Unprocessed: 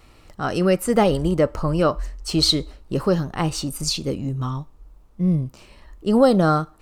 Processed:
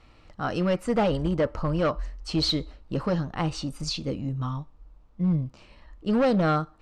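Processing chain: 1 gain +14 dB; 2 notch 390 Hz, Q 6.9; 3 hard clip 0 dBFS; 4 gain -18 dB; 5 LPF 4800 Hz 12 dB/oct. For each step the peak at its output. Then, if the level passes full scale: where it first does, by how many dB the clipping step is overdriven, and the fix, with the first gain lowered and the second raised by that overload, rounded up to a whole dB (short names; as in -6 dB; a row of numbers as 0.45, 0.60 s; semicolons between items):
+10.0, +9.5, 0.0, -18.0, -17.5 dBFS; step 1, 9.5 dB; step 1 +4 dB, step 4 -8 dB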